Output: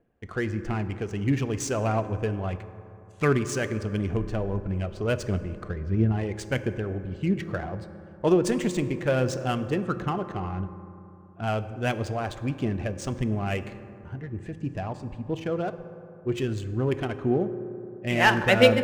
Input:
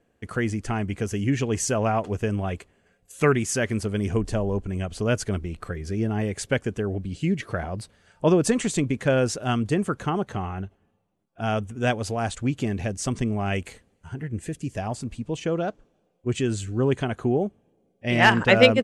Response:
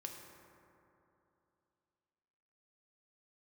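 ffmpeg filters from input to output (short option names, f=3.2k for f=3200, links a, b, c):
-filter_complex "[0:a]asettb=1/sr,asplit=3[a][b][c];[a]atrim=end=5.704[d];[b]atrim=start=5.7:end=6.12,asetpts=PTS-STARTPTS,afade=t=in:d=0.004:c=qsin,afade=t=out:st=0.416:d=0.004:c=qsin,bass=f=250:g=5,treble=f=4k:g=-9[e];[c]atrim=start=6.116[f];[d][e]acrossfade=d=0.004:c1=hsin:c2=qsin[g];[g][f]acrossfade=d=0.004:c1=qsin:c2=hsin,aphaser=in_gain=1:out_gain=1:delay=2.9:decay=0.29:speed=1.5:type=triangular,adynamicsmooth=sensitivity=6:basefreq=2.3k,asplit=2[h][i];[1:a]atrim=start_sample=2205[j];[i][j]afir=irnorm=-1:irlink=0,volume=0dB[k];[h][k]amix=inputs=2:normalize=0,volume=-7dB"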